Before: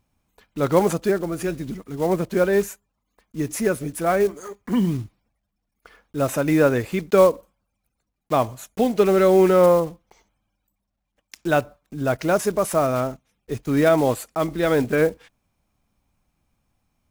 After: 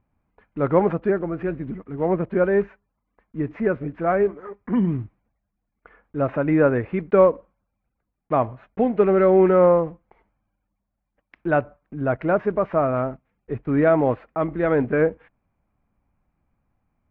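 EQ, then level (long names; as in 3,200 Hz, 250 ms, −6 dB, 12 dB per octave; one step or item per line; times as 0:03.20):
low-pass filter 2,200 Hz 24 dB per octave
high-frequency loss of the air 120 metres
0.0 dB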